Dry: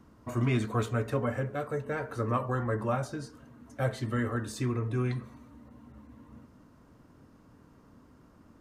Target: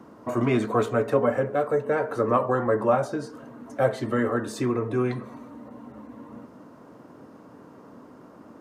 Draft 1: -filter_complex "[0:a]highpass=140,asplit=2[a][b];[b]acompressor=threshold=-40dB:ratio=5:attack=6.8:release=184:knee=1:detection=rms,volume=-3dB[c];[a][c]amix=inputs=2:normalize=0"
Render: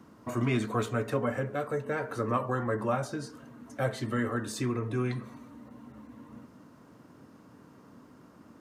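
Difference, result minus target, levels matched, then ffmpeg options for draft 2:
500 Hz band -2.5 dB
-filter_complex "[0:a]highpass=140,equalizer=f=580:w=0.48:g=10.5,asplit=2[a][b];[b]acompressor=threshold=-40dB:ratio=5:attack=6.8:release=184:knee=1:detection=rms,volume=-3dB[c];[a][c]amix=inputs=2:normalize=0"

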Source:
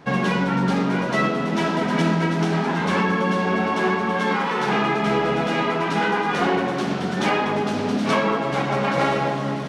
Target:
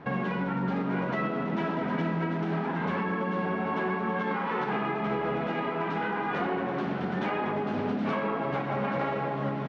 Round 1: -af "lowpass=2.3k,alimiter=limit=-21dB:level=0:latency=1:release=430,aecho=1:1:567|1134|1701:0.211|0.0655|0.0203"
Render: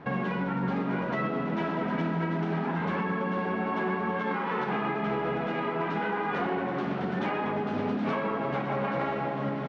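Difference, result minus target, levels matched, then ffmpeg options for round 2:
echo 0.336 s early
-af "lowpass=2.3k,alimiter=limit=-21dB:level=0:latency=1:release=430,aecho=1:1:903|1806|2709:0.211|0.0655|0.0203"

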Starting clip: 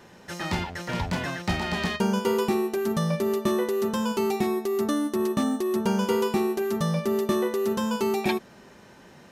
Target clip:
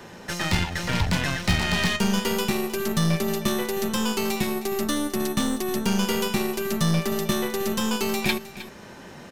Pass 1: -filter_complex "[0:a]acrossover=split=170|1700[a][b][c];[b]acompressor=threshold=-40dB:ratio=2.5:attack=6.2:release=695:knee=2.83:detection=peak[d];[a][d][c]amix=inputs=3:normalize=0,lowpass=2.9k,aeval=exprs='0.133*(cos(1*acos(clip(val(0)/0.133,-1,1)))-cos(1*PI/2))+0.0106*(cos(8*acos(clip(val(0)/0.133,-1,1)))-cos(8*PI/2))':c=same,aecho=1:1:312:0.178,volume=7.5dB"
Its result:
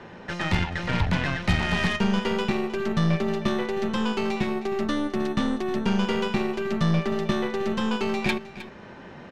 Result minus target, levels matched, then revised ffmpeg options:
4000 Hz band -4.0 dB
-filter_complex "[0:a]acrossover=split=170|1700[a][b][c];[b]acompressor=threshold=-40dB:ratio=2.5:attack=6.2:release=695:knee=2.83:detection=peak[d];[a][d][c]amix=inputs=3:normalize=0,aeval=exprs='0.133*(cos(1*acos(clip(val(0)/0.133,-1,1)))-cos(1*PI/2))+0.0106*(cos(8*acos(clip(val(0)/0.133,-1,1)))-cos(8*PI/2))':c=same,aecho=1:1:312:0.178,volume=7.5dB"

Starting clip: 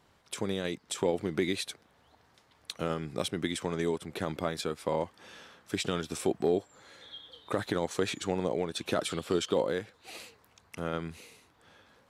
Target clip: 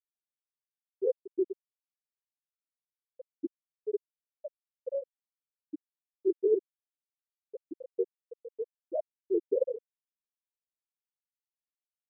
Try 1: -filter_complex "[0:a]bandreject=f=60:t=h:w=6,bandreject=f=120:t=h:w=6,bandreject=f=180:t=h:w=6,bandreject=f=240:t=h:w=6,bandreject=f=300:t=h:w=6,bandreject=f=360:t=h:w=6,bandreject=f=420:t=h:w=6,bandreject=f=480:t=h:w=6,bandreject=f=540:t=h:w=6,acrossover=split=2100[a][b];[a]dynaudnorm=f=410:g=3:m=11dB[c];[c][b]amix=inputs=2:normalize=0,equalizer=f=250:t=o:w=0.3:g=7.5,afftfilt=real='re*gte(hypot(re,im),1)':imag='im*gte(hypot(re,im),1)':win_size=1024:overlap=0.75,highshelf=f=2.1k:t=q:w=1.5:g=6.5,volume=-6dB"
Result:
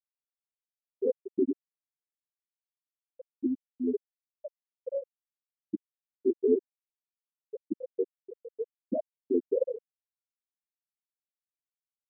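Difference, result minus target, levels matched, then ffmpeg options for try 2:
250 Hz band +5.0 dB
-filter_complex "[0:a]bandreject=f=60:t=h:w=6,bandreject=f=120:t=h:w=6,bandreject=f=180:t=h:w=6,bandreject=f=240:t=h:w=6,bandreject=f=300:t=h:w=6,bandreject=f=360:t=h:w=6,bandreject=f=420:t=h:w=6,bandreject=f=480:t=h:w=6,bandreject=f=540:t=h:w=6,acrossover=split=2100[a][b];[a]dynaudnorm=f=410:g=3:m=11dB[c];[c][b]amix=inputs=2:normalize=0,afftfilt=real='re*gte(hypot(re,im),1)':imag='im*gte(hypot(re,im),1)':win_size=1024:overlap=0.75,highshelf=f=2.1k:t=q:w=1.5:g=6.5,volume=-6dB"

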